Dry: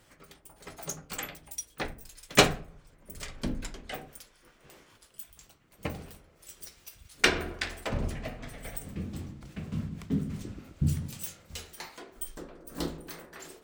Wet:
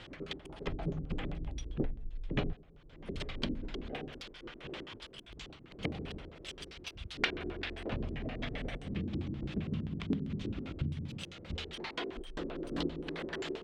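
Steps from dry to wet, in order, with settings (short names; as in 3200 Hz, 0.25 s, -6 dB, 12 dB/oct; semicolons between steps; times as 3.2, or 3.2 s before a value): 0.67–2.53 tilt -4.5 dB/oct; compressor 6:1, threshold -45 dBFS, peak gain reduction 32.5 dB; LFO low-pass square 7.6 Hz 360–3300 Hz; gain +10 dB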